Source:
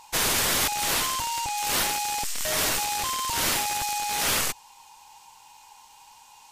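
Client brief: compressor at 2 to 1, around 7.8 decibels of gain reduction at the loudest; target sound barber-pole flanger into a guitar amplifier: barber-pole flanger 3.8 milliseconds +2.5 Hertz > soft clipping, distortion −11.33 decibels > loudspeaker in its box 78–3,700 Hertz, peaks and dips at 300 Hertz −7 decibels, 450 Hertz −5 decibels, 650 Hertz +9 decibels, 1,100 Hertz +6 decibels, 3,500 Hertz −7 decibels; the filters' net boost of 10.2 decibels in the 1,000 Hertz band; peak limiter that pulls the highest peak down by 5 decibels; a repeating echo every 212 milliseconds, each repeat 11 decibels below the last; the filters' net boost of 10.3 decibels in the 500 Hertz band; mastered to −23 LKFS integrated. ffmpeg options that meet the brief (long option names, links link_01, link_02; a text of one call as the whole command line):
ffmpeg -i in.wav -filter_complex "[0:a]equalizer=frequency=500:width_type=o:gain=5,equalizer=frequency=1000:width_type=o:gain=6.5,acompressor=threshold=-34dB:ratio=2,alimiter=limit=-23dB:level=0:latency=1,aecho=1:1:212|424|636:0.282|0.0789|0.0221,asplit=2[link_01][link_02];[link_02]adelay=3.8,afreqshift=2.5[link_03];[link_01][link_03]amix=inputs=2:normalize=1,asoftclip=threshold=-35dB,highpass=78,equalizer=frequency=300:width_type=q:width=4:gain=-7,equalizer=frequency=450:width_type=q:width=4:gain=-5,equalizer=frequency=650:width_type=q:width=4:gain=9,equalizer=frequency=1100:width_type=q:width=4:gain=6,equalizer=frequency=3500:width_type=q:width=4:gain=-7,lowpass=frequency=3700:width=0.5412,lowpass=frequency=3700:width=1.3066,volume=15.5dB" out.wav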